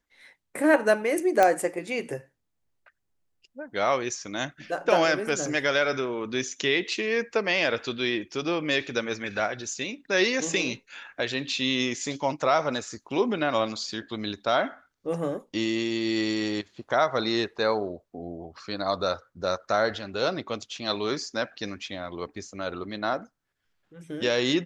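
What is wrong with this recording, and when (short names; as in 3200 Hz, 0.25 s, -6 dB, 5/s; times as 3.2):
1.43 pop -8 dBFS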